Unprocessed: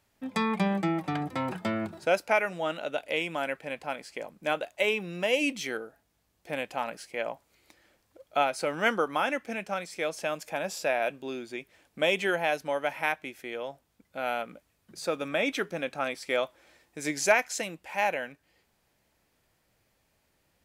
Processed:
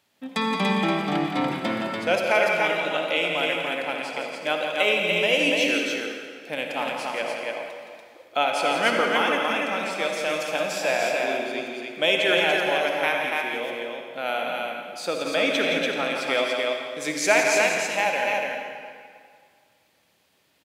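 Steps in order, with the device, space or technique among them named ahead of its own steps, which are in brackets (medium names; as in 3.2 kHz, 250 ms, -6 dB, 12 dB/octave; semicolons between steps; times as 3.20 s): stadium PA (high-pass 160 Hz 12 dB/octave; peaking EQ 3.4 kHz +6.5 dB 0.89 oct; loudspeakers at several distances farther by 58 m -8 dB, 99 m -3 dB; reverberation RT60 2.0 s, pre-delay 50 ms, DRR 2.5 dB); trim +1.5 dB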